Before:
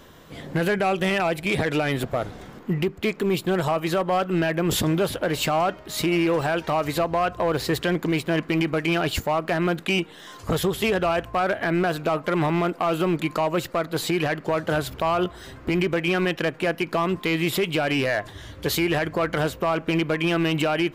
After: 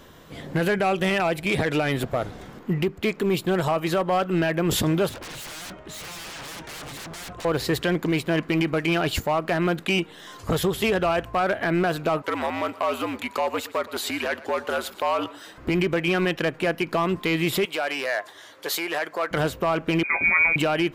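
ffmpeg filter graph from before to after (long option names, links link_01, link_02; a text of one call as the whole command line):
ffmpeg -i in.wav -filter_complex "[0:a]asettb=1/sr,asplit=3[link_01][link_02][link_03];[link_01]atrim=end=5.094[link_04];[link_02]atrim=start=5.09:end=7.45,asetpts=PTS-STARTPTS,afade=type=in:duration=0.004:curve=qsin,afade=type=out:start_time=2.356:duration=0.004:curve=qsin,lowpass=7700,equalizer=frequency=4700:width_type=o:width=0.52:gain=-9.5,aeval=exprs='0.0237*(abs(mod(val(0)/0.0237+3,4)-2)-1)':channel_layout=same[link_05];[link_03]atrim=start=7.446[link_06];[link_04][link_05]acrossfade=duration=0.004:curve1=hsin:curve2=qsin[link_07];[link_07][link_06]acrossfade=duration=0.004:curve1=qsin:curve2=hsin,asettb=1/sr,asplit=3[link_08][link_09][link_10];[link_08]atrim=end=12.224[link_11];[link_09]atrim=start=12.22:end=15.58,asetpts=PTS-STARTPTS,afade=type=in:duration=0.004:curve=qsin,afade=type=out:start_time=3.356:duration=0.004:curve=qsin,highpass=510,aecho=1:1:120:0.126,atrim=end_sample=148176,afreqshift=-71[link_12];[link_10]atrim=start=15.576[link_13];[link_11][link_12]acrossfade=duration=0.004:curve1=hsin:curve2=qsin[link_14];[link_14][link_13]acrossfade=duration=0.004:curve1=qsin:curve2=hsin,asettb=1/sr,asplit=3[link_15][link_16][link_17];[link_15]atrim=end=17.654[link_18];[link_16]atrim=start=17.65:end=19.31,asetpts=PTS-STARTPTS,afade=type=in:duration=0.004:curve=qsin,afade=type=out:start_time=1.656:duration=0.004:curve=qsin,highpass=570,equalizer=frequency=2800:width_type=o:width=0.68:gain=-3.5[link_19];[link_17]atrim=start=19.306[link_20];[link_18][link_19]acrossfade=duration=0.004:curve1=hsin:curve2=qsin[link_21];[link_21][link_20]acrossfade=duration=0.004:curve1=qsin:curve2=hsin,asettb=1/sr,asplit=3[link_22][link_23][link_24];[link_22]atrim=end=20.034[link_25];[link_23]atrim=start=20.03:end=20.56,asetpts=PTS-STARTPTS,afade=type=in:duration=0.004:curve=qsin,afade=type=out:start_time=0.526:duration=0.004:curve=qsin,asplit=2[link_26][link_27];[link_27]adelay=18,volume=-5dB[link_28];[link_26][link_28]amix=inputs=2:normalize=0,atrim=end_sample=23373,lowpass=frequency=2200:width_type=q:width=0.5098,lowpass=frequency=2200:width_type=q:width=0.6013,lowpass=frequency=2200:width_type=q:width=0.9,lowpass=frequency=2200:width_type=q:width=2.563,afreqshift=-2600[link_29];[link_24]atrim=start=20.556[link_30];[link_25][link_29]acrossfade=duration=0.004:curve1=hsin:curve2=qsin[link_31];[link_31][link_30]acrossfade=duration=0.004:curve1=qsin:curve2=hsin" out.wav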